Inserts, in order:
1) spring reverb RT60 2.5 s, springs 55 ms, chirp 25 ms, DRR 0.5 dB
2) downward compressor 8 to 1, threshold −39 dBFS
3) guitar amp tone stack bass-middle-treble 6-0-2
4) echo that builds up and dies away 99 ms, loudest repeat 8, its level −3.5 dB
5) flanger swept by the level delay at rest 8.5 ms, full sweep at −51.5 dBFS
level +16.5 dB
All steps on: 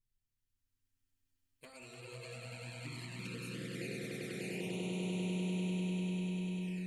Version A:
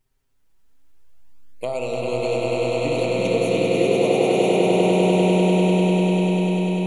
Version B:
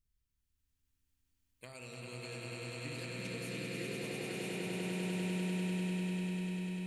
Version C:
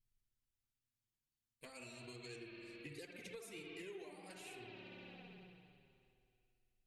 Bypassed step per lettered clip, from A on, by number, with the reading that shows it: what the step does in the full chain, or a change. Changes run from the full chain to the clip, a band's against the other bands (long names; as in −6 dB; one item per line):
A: 3, 1 kHz band +12.5 dB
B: 5, 125 Hz band −2.5 dB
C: 4, 125 Hz band −12.0 dB